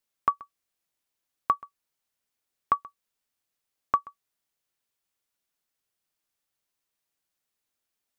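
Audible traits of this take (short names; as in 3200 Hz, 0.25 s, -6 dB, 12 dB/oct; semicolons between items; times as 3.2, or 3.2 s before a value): noise floor -84 dBFS; spectral tilt -2.5 dB/oct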